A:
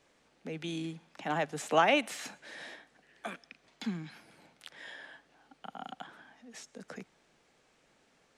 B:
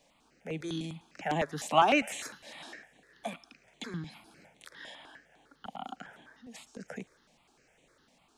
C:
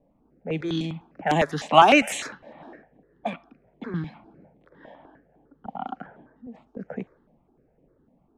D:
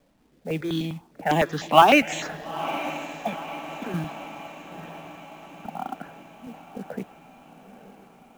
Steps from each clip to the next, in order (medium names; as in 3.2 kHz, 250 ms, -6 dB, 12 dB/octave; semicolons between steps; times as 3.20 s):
thinning echo 110 ms, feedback 70%, high-pass 940 Hz, level -22 dB; stepped phaser 9.9 Hz 370–5000 Hz; trim +4.5 dB
level-controlled noise filter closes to 400 Hz, open at -28.5 dBFS; trim +9 dB
echo that smears into a reverb 920 ms, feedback 58%, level -13 dB; resampled via 16 kHz; companded quantiser 6-bit